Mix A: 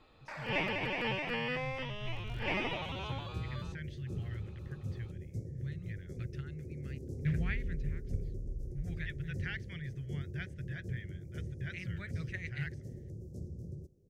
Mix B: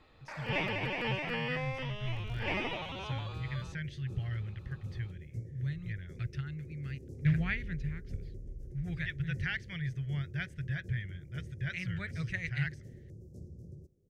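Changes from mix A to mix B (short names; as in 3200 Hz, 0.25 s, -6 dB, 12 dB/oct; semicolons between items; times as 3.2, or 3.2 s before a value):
speech +5.5 dB; second sound -4.5 dB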